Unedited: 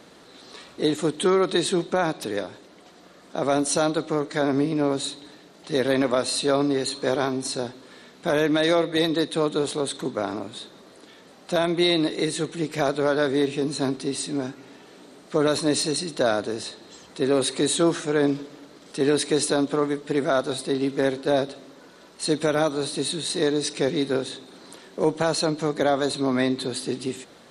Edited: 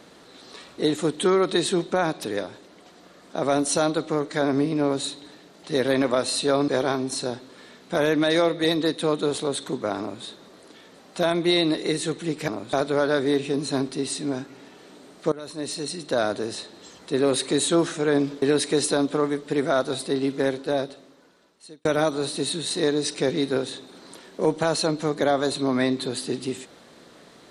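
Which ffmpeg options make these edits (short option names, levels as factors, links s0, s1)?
-filter_complex "[0:a]asplit=7[s0][s1][s2][s3][s4][s5][s6];[s0]atrim=end=6.682[s7];[s1]atrim=start=7.008:end=12.812[s8];[s2]atrim=start=10.318:end=10.572[s9];[s3]atrim=start=12.808:end=15.4,asetpts=PTS-STARTPTS,afade=t=out:st=2.588:d=0.004:c=hsin:silence=0.0841395[s10];[s4]atrim=start=15.4:end=18.502,asetpts=PTS-STARTPTS,afade=t=in:d=1.04:silence=0.0841395[s11];[s5]atrim=start=19.008:end=22.44,asetpts=PTS-STARTPTS,afade=t=out:st=1.862:d=1.57[s12];[s6]atrim=start=22.44,asetpts=PTS-STARTPTS,afade=t=in:d=0.004:c=hsin[s13];[s7][s8]acrossfade=d=0.004:c1=hsin:c2=hsin[s14];[s14][s9]acrossfade=d=0.004:c1=hsin:c2=hsin[s15];[s10][s11]concat=n=2:v=0:a=1[s16];[s15][s16]acrossfade=d=0.004:c1=hsin:c2=hsin[s17];[s12][s13]concat=n=2:v=0:a=1[s18];[s17][s18]acrossfade=d=0.004:c1=hsin:c2=hsin"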